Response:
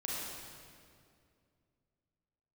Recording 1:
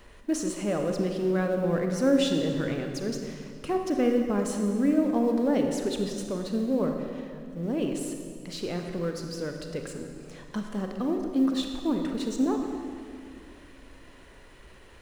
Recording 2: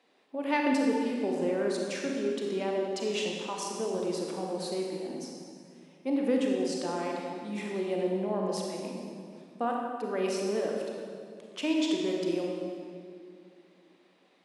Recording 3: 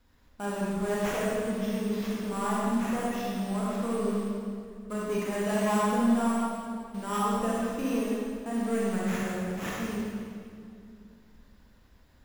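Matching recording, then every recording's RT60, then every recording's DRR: 3; 2.4, 2.3, 2.3 seconds; 3.5, −1.0, −6.0 decibels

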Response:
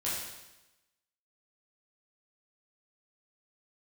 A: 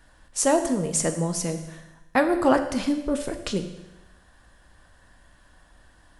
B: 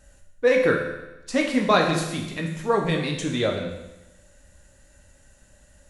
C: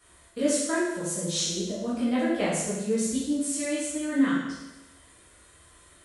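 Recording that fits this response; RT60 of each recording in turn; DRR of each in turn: C; 1.0, 1.0, 1.0 seconds; 6.5, 1.0, −9.0 decibels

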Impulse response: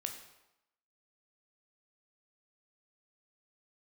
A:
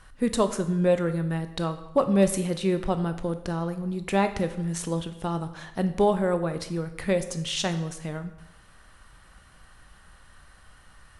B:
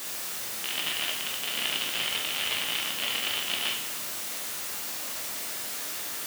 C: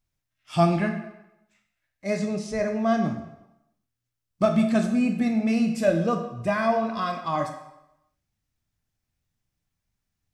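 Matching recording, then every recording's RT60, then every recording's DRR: C; 0.90, 0.90, 0.90 seconds; 9.0, −1.5, 4.0 decibels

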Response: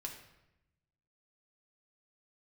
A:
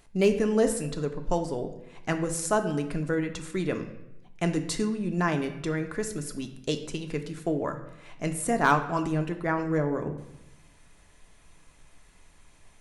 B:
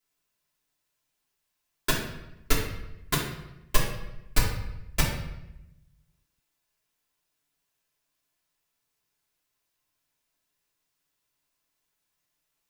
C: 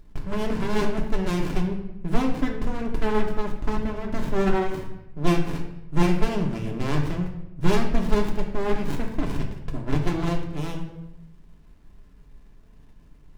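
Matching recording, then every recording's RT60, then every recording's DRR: C; 0.90, 0.90, 0.90 seconds; 5.5, −6.5, 0.5 decibels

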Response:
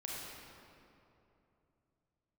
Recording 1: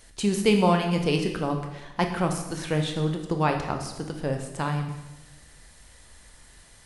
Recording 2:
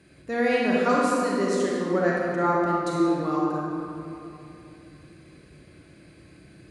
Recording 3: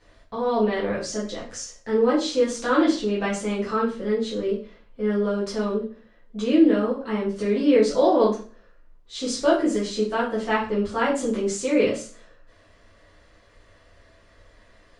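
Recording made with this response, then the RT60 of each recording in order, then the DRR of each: 2; 1.1, 2.9, 0.40 seconds; 3.5, −4.5, −7.5 decibels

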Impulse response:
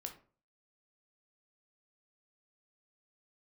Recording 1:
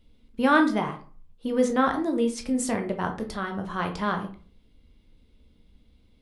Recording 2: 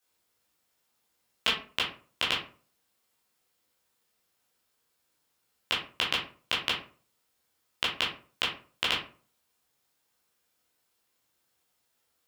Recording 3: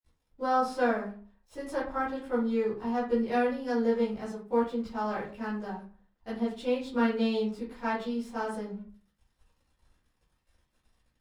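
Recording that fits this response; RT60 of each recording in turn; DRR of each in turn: 1; 0.40, 0.40, 0.40 seconds; 4.0, −6.0, −13.0 decibels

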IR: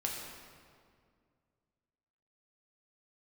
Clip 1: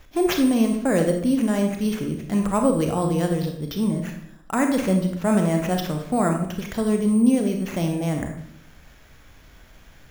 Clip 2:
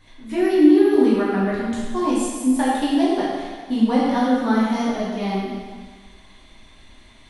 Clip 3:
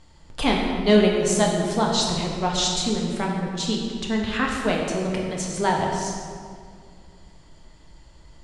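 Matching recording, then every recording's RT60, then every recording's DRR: 3; 0.65, 1.6, 2.1 seconds; 3.5, −8.0, −2.0 decibels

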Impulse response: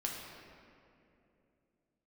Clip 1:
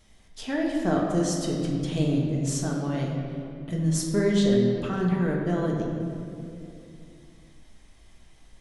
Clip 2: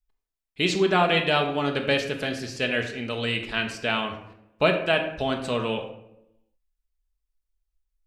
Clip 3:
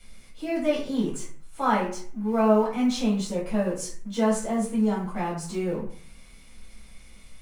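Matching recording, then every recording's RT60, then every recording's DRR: 1; 2.7, 0.85, 0.50 seconds; −2.0, 3.0, −9.0 decibels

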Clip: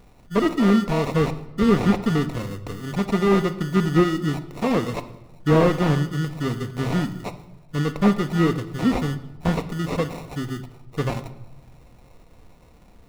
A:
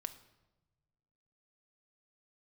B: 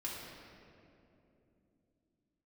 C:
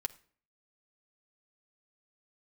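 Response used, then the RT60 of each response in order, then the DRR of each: A; 1.1 s, 2.9 s, non-exponential decay; 9.0, −5.5, 3.5 decibels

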